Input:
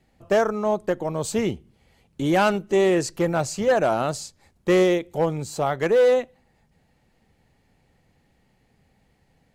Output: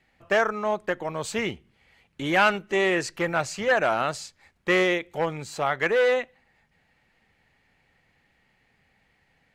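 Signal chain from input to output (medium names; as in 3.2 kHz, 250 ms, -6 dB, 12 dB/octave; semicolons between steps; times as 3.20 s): peaking EQ 2 kHz +14 dB 2.2 oct; trim -7.5 dB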